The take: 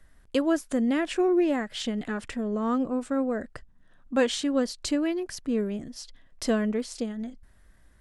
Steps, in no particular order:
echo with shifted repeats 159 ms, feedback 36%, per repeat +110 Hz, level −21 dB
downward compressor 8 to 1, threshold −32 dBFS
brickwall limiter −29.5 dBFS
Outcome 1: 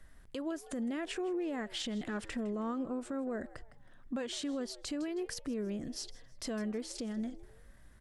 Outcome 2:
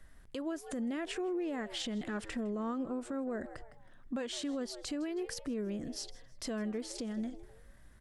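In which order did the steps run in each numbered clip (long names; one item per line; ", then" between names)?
downward compressor, then echo with shifted repeats, then brickwall limiter
echo with shifted repeats, then downward compressor, then brickwall limiter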